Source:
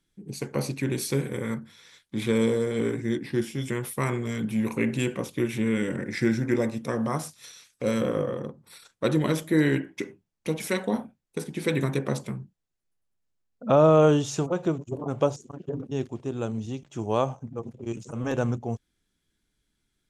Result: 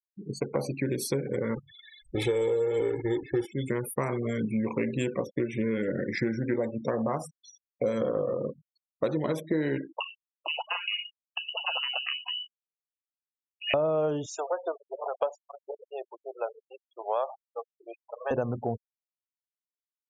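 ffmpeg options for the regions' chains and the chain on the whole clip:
-filter_complex "[0:a]asettb=1/sr,asplit=3[s0][s1][s2];[s0]atrim=end=1.554[s3];[s1]atrim=start=1.55:end=3.53,asetpts=PTS-STARTPTS,afade=t=in:d=0.004:c=qsin,afade=t=out:st=1.976:d=0.004:c=qsin,aeval=exprs='val(0)+0.5*0.0188*sgn(val(0))':c=same,agate=range=0.355:threshold=0.0251:ratio=16:release=100:detection=peak,aecho=1:1:2.3:0.82,atrim=end_sample=87318[s4];[s2]atrim=start=3.526[s5];[s3][s4]acrossfade=d=0.004:c1=hsin:c2=qsin[s6];[s6][s5]acrossfade=d=0.004:c1=qsin:c2=hsin,asettb=1/sr,asplit=3[s7][s8][s9];[s7]atrim=end=9.984[s10];[s8]atrim=start=9.98:end=13.74,asetpts=PTS-STARTPTS,afade=t=in:d=0.004:c=qsin,afade=t=out:st=3.756:d=0.004:c=qsin,aemphasis=mode=production:type=75kf,acompressor=threshold=0.0355:ratio=2.5:attack=3.2:release=140:knee=1:detection=peak,lowpass=f=2600:t=q:w=0.5098,lowpass=f=2600:t=q:w=0.6013,lowpass=f=2600:t=q:w=0.9,lowpass=f=2600:t=q:w=2.563,afreqshift=-3100[s11];[s9]atrim=start=13.736[s12];[s10][s11]acrossfade=d=0.004:c1=hsin:c2=qsin[s13];[s13][s12]acrossfade=d=0.004:c1=qsin:c2=hsin,asettb=1/sr,asplit=3[s14][s15][s16];[s14]atrim=end=14.264[s17];[s15]atrim=start=14.26:end=18.31,asetpts=PTS-STARTPTS,afade=t=in:d=0.004:c=qsin,afade=t=out:st=4.046:d=0.004:c=qsin,aeval=exprs='if(lt(val(0),0),0.708*val(0),val(0))':c=same,highpass=f=570:w=0.5412,highpass=f=570:w=1.3066[s18];[s16]atrim=start=18.306[s19];[s17][s18]acrossfade=d=0.004:c1=hsin:c2=qsin[s20];[s20][s19]acrossfade=d=0.004:c1=qsin:c2=hsin,afftfilt=real='re*gte(hypot(re,im),0.0178)':imag='im*gte(hypot(re,im),0.0178)':win_size=1024:overlap=0.75,equalizer=f=620:w=0.99:g=9,acompressor=threshold=0.0562:ratio=6"

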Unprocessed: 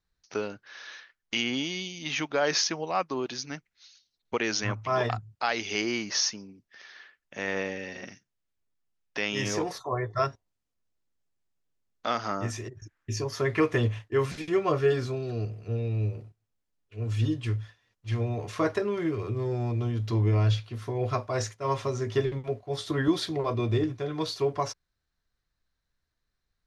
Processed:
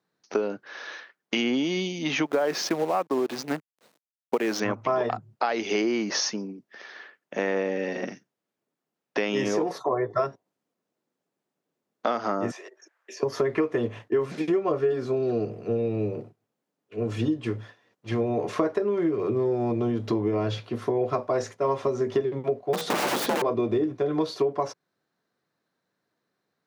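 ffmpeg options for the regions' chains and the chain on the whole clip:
-filter_complex "[0:a]asettb=1/sr,asplit=3[s0][s1][s2];[s0]atrim=end=2.264[s3];[s1]atrim=start=2.26:end=4.6,asetpts=PTS-STARTPTS,afade=t=in:d=0.004:c=qsin,afade=t=out:st=2.336:d=0.004:c=qsin,adynamicsmooth=sensitivity=7.5:basefreq=2700,acrusher=bits=7:dc=4:mix=0:aa=0.000001[s4];[s2]atrim=start=4.596[s5];[s3][s4]acrossfade=d=0.004:c1=hsin:c2=qsin[s6];[s6][s5]acrossfade=d=0.004:c1=qsin:c2=hsin,asettb=1/sr,asplit=3[s7][s8][s9];[s7]atrim=end=12.514[s10];[s8]atrim=start=12.51:end=13.23,asetpts=PTS-STARTPTS,afade=t=in:d=0.004:c=qsin,afade=t=out:st=0.716:d=0.004:c=qsin,highpass=f=550:w=0.5412,highpass=f=550:w=1.3066,acrossover=split=1500|5400[s11][s12][s13];[s11]acompressor=threshold=0.00141:ratio=4[s14];[s12]acompressor=threshold=0.00447:ratio=4[s15];[s13]acompressor=threshold=0.002:ratio=4[s16];[s14][s15][s16]amix=inputs=3:normalize=0[s17];[s9]atrim=start=13.226[s18];[s10][s17]acrossfade=d=0.004:c1=hsin:c2=qsin[s19];[s19][s18]acrossfade=d=0.004:c1=qsin:c2=hsin,asettb=1/sr,asplit=3[s20][s21][s22];[s20]atrim=end=22.734[s23];[s21]atrim=start=22.73:end=23.42,asetpts=PTS-STARTPTS,afade=t=in:d=0.004:c=qsin,afade=t=out:st=0.686:d=0.004:c=qsin,acontrast=36,aeval=exprs='(mod(15*val(0)+1,2)-1)/15':c=same,afreqshift=57[s24];[s22]atrim=start=23.416[s25];[s23][s24]acrossfade=d=0.004:c1=hsin:c2=qsin[s26];[s26][s25]acrossfade=d=0.004:c1=qsin:c2=hsin,highpass=f=140:w=0.5412,highpass=f=140:w=1.3066,equalizer=f=430:w=0.33:g=13.5,acompressor=threshold=0.0794:ratio=6"

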